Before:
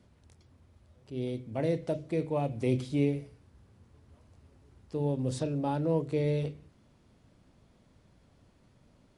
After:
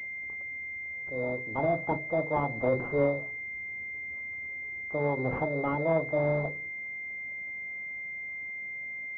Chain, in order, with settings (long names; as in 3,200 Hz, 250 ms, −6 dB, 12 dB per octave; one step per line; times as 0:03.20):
spectral tilt +3 dB per octave
formants moved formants +6 semitones
switching amplifier with a slow clock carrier 2,100 Hz
level +7 dB